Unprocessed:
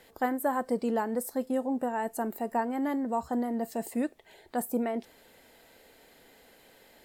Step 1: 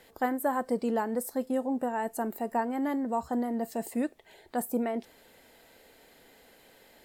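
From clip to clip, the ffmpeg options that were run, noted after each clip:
-af anull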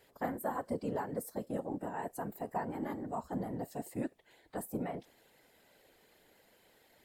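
-af "afftfilt=real='hypot(re,im)*cos(2*PI*random(0))':imag='hypot(re,im)*sin(2*PI*random(1))':win_size=512:overlap=0.75,volume=0.794"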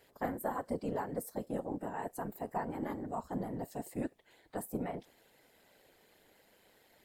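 -af "tremolo=f=200:d=0.462,volume=1.26"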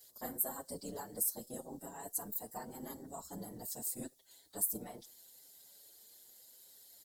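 -filter_complex "[0:a]aexciter=amount=12.3:drive=3.3:freq=3700,asplit=2[s0][s1];[s1]adelay=6.3,afreqshift=0.82[s2];[s0][s2]amix=inputs=2:normalize=1,volume=0.501"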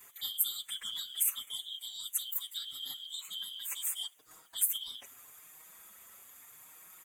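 -af "afftfilt=real='real(if(lt(b,272),68*(eq(floor(b/68),0)*2+eq(floor(b/68),1)*3+eq(floor(b/68),2)*0+eq(floor(b/68),3)*1)+mod(b,68),b),0)':imag='imag(if(lt(b,272),68*(eq(floor(b/68),0)*2+eq(floor(b/68),1)*3+eq(floor(b/68),2)*0+eq(floor(b/68),3)*1)+mod(b,68),b),0)':win_size=2048:overlap=0.75,volume=1.68"

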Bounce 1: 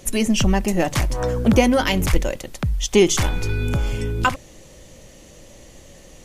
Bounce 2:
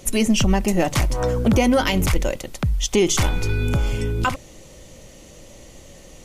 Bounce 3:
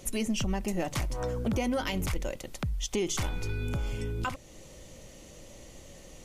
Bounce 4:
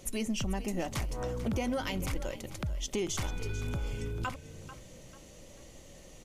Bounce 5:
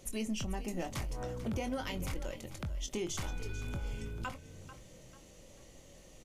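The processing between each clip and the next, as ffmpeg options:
-af "bandreject=f=1700:w=14,alimiter=level_in=2.66:limit=0.891:release=50:level=0:latency=1,volume=0.422"
-af "acompressor=threshold=0.0224:ratio=1.5,volume=0.531"
-filter_complex "[0:a]asplit=4[s0][s1][s2][s3];[s1]adelay=442,afreqshift=37,volume=0.2[s4];[s2]adelay=884,afreqshift=74,volume=0.0661[s5];[s3]adelay=1326,afreqshift=111,volume=0.0216[s6];[s0][s4][s5][s6]amix=inputs=4:normalize=0,volume=0.708"
-filter_complex "[0:a]asplit=2[s0][s1];[s1]adelay=23,volume=0.335[s2];[s0][s2]amix=inputs=2:normalize=0,volume=0.596"

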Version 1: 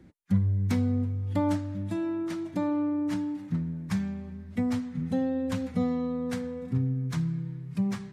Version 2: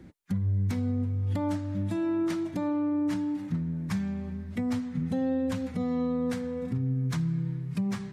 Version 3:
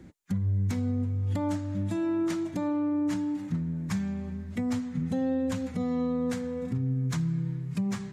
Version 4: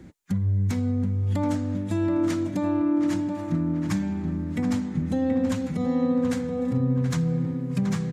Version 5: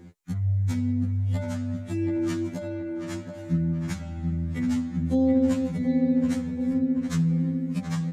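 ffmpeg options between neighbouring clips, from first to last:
-af "alimiter=level_in=1.26:limit=0.0631:level=0:latency=1:release=324,volume=0.794,volume=1.68"
-af "equalizer=f=7000:t=o:w=0.39:g=6"
-filter_complex "[0:a]asplit=2[s0][s1];[s1]adelay=728,lowpass=f=2400:p=1,volume=0.501,asplit=2[s2][s3];[s3]adelay=728,lowpass=f=2400:p=1,volume=0.47,asplit=2[s4][s5];[s5]adelay=728,lowpass=f=2400:p=1,volume=0.47,asplit=2[s6][s7];[s7]adelay=728,lowpass=f=2400:p=1,volume=0.47,asplit=2[s8][s9];[s9]adelay=728,lowpass=f=2400:p=1,volume=0.47,asplit=2[s10][s11];[s11]adelay=728,lowpass=f=2400:p=1,volume=0.47[s12];[s0][s2][s4][s6][s8][s10][s12]amix=inputs=7:normalize=0,volume=1.5"
-af "afftfilt=real='re*2*eq(mod(b,4),0)':imag='im*2*eq(mod(b,4),0)':win_size=2048:overlap=0.75"

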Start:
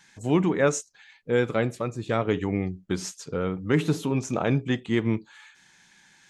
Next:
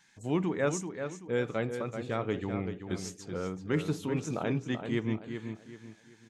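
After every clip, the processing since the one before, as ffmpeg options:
-filter_complex "[0:a]asplit=2[s0][s1];[s1]adelay=384,lowpass=f=4200:p=1,volume=0.422,asplit=2[s2][s3];[s3]adelay=384,lowpass=f=4200:p=1,volume=0.34,asplit=2[s4][s5];[s5]adelay=384,lowpass=f=4200:p=1,volume=0.34,asplit=2[s6][s7];[s7]adelay=384,lowpass=f=4200:p=1,volume=0.34[s8];[s0][s2][s4][s6][s8]amix=inputs=5:normalize=0,volume=0.422"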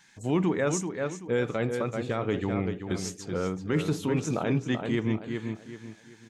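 -af "alimiter=limit=0.0794:level=0:latency=1:release=24,volume=1.88"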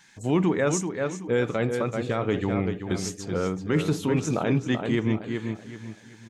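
-filter_complex "[0:a]asplit=2[s0][s1];[s1]adelay=758,volume=0.1,highshelf=f=4000:g=-17.1[s2];[s0][s2]amix=inputs=2:normalize=0,volume=1.41"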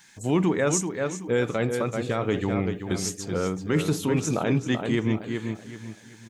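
-af "highshelf=f=7700:g=10"

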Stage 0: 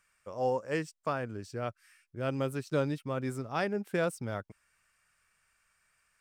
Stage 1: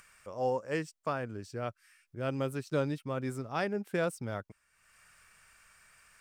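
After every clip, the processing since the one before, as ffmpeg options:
-af "acompressor=mode=upward:threshold=0.00398:ratio=2.5,volume=0.891"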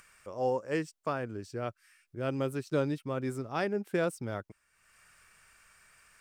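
-af "equalizer=f=350:t=o:w=0.67:g=4"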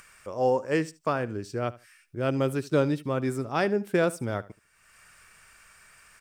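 -af "aecho=1:1:75|150:0.106|0.0201,volume=2"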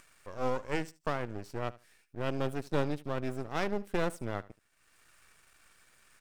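-af "aeval=exprs='max(val(0),0)':c=same,volume=0.631"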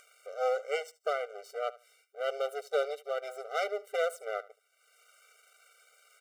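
-af "afftfilt=real='re*eq(mod(floor(b*sr/1024/390),2),1)':imag='im*eq(mod(floor(b*sr/1024/390),2),1)':win_size=1024:overlap=0.75,volume=1.68"

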